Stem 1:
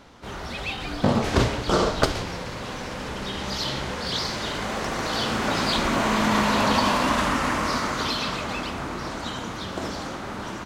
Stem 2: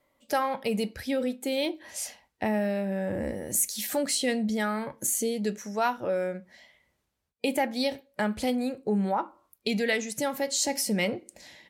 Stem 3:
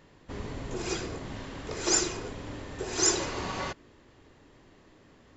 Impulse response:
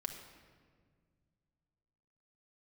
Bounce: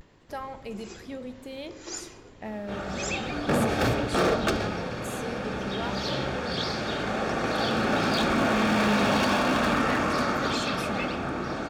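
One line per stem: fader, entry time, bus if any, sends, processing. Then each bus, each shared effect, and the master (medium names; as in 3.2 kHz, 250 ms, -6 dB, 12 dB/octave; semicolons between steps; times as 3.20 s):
+2.0 dB, 2.45 s, no send, low-pass 2.5 kHz 6 dB/octave; wavefolder -18.5 dBFS; comb of notches 1 kHz
-13.0 dB, 0.00 s, send -4 dB, treble shelf 5.9 kHz -9 dB
-12.0 dB, 0.00 s, no send, upward compressor, threshold -35 dBFS; vibrato 0.41 Hz 36 cents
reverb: on, RT60 1.8 s, pre-delay 5 ms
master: none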